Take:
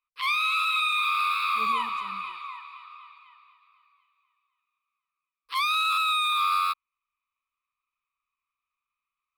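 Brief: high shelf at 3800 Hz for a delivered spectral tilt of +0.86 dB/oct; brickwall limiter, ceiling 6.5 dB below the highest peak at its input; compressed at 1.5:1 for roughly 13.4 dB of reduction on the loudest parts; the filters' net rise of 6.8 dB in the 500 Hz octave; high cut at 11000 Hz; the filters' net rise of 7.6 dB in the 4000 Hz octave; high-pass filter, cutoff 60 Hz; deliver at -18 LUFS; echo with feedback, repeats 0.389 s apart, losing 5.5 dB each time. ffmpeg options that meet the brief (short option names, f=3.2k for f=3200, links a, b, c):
-af "highpass=60,lowpass=11k,equalizer=f=500:t=o:g=7.5,highshelf=f=3.8k:g=3,equalizer=f=4k:t=o:g=6.5,acompressor=threshold=-57dB:ratio=1.5,alimiter=level_in=8dB:limit=-24dB:level=0:latency=1,volume=-8dB,aecho=1:1:389|778|1167|1556|1945|2334|2723:0.531|0.281|0.149|0.079|0.0419|0.0222|0.0118,volume=20.5dB"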